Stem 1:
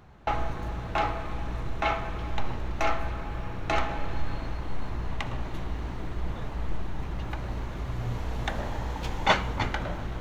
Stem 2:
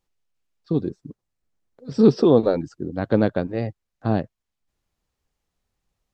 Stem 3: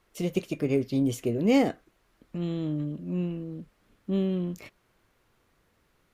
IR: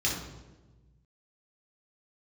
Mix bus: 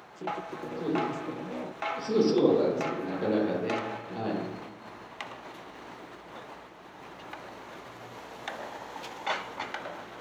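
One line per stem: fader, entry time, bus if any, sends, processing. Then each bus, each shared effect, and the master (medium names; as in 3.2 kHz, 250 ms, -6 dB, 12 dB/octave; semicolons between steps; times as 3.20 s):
-9.5 dB, 0.00 s, no bus, no send, level flattener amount 50%
-4.0 dB, 0.10 s, bus A, send -10.5 dB, none
+1.5 dB, 0.00 s, bus A, no send, vocoder on a held chord major triad, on B2
bus A: 0.0 dB, peak limiter -25.5 dBFS, peak gain reduction 19 dB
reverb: on, RT60 1.2 s, pre-delay 3 ms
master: high-pass 360 Hz 12 dB/octave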